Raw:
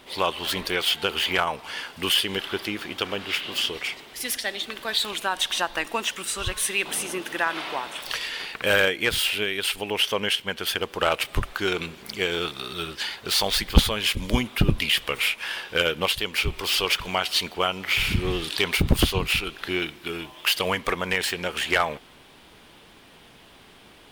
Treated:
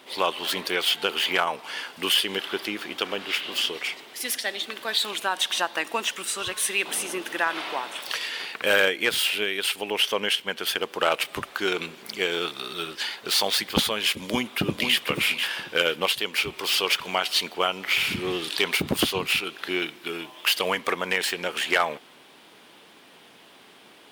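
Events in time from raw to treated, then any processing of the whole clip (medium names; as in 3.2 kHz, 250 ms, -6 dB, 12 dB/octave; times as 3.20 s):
14.14–15.03 s: echo throw 490 ms, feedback 15%, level -6.5 dB
whole clip: high-pass 220 Hz 12 dB/octave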